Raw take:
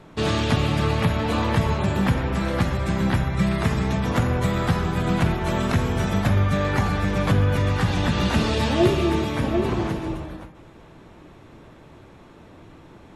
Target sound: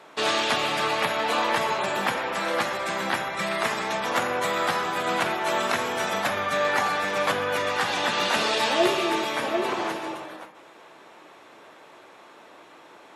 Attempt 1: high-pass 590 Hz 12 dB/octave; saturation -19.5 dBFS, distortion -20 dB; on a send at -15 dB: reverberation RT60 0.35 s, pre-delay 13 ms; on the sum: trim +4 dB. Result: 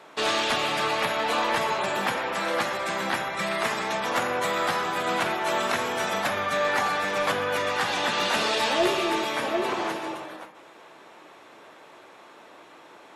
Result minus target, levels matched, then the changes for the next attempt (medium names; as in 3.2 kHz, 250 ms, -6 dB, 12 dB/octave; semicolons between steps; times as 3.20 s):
saturation: distortion +11 dB
change: saturation -12.5 dBFS, distortion -30 dB